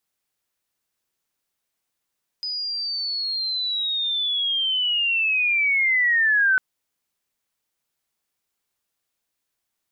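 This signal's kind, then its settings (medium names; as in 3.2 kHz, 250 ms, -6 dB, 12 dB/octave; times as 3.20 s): sweep linear 5 kHz -> 1.5 kHz -25.5 dBFS -> -15 dBFS 4.15 s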